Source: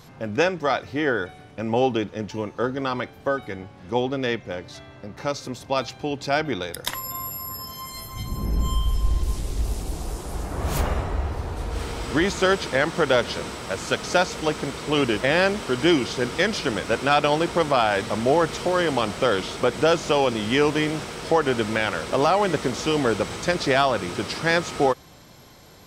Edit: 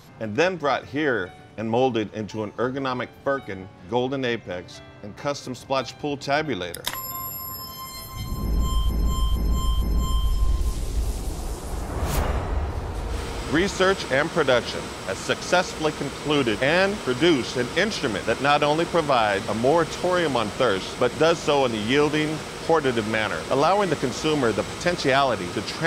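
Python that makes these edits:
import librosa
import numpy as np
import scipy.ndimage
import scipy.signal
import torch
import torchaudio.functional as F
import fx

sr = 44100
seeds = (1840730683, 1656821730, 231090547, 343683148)

y = fx.edit(x, sr, fx.repeat(start_s=8.44, length_s=0.46, count=4), tone=tone)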